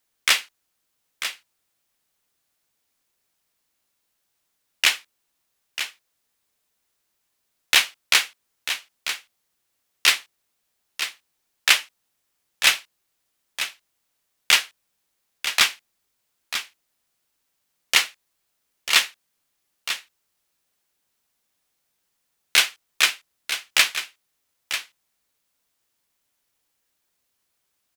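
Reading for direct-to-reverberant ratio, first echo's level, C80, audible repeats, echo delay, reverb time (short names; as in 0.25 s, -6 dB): none, -10.0 dB, none, 1, 0.943 s, none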